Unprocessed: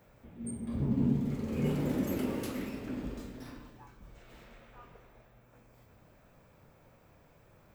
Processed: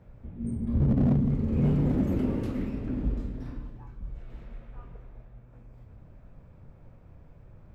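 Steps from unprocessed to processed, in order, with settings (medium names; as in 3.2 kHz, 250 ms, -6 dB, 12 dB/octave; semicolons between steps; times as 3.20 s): RIAA curve playback; in parallel at -3 dB: wavefolder -18.5 dBFS; on the sum: trim -5.5 dB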